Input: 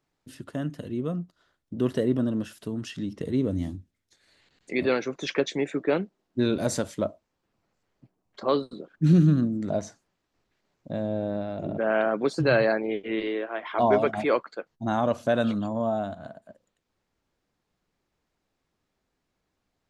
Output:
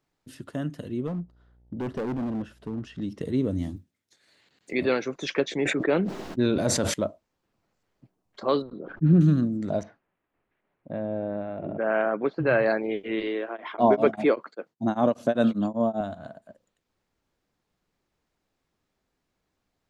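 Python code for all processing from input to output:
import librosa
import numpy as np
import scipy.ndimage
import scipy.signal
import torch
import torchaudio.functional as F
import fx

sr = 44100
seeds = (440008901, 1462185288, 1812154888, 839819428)

y = fx.lowpass(x, sr, hz=1300.0, slope=6, at=(1.06, 3.01), fade=0.02)
y = fx.dmg_buzz(y, sr, base_hz=60.0, harmonics=15, level_db=-59.0, tilt_db=-9, odd_only=False, at=(1.06, 3.01), fade=0.02)
y = fx.overload_stage(y, sr, gain_db=26.5, at=(1.06, 3.01), fade=0.02)
y = fx.chain(y, sr, fx.block_float(bits=7),
    fx.highpass(hz=120.0, slope=12), at=(3.76, 4.73))
y = fx.chain(y, sr, fx.high_shelf(hz=6400.0, db=-8.5),
    fx.sustainer(db_per_s=35.0), at=(5.45, 6.94))
y = fx.chain(y, sr, fx.lowpass(hz=1400.0, slope=12),
    fx.sustainer(db_per_s=48.0), at=(8.62, 9.21))
y = fx.chain(y, sr, fx.lowpass(hz=2600.0, slope=24),
    fx.low_shelf(hz=180.0, db=-6.0), at=(9.83, 12.66))
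y = fx.chain(y, sr, fx.highpass(hz=210.0, slope=12),
    fx.low_shelf(hz=460.0, db=10.5),
    fx.tremolo_abs(hz=5.1), at=(13.48, 16.01))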